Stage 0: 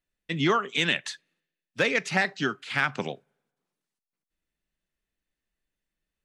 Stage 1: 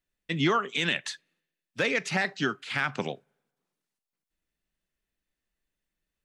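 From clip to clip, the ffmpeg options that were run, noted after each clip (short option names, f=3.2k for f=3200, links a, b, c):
-af "alimiter=limit=-14.5dB:level=0:latency=1:release=35"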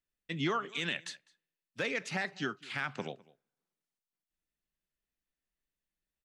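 -filter_complex "[0:a]asplit=2[a][b];[b]adelay=204.1,volume=-23dB,highshelf=f=4k:g=-4.59[c];[a][c]amix=inputs=2:normalize=0,volume=-7.5dB"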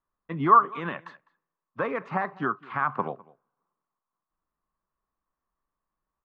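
-af "lowpass=f=1.1k:t=q:w=7.3,volume=5.5dB"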